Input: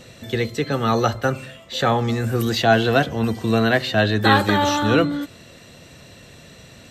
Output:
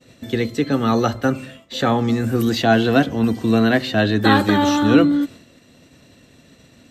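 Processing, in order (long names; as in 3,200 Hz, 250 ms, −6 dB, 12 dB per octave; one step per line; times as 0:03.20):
downward expander −38 dBFS
parametric band 270 Hz +10 dB 0.58 octaves
level −1 dB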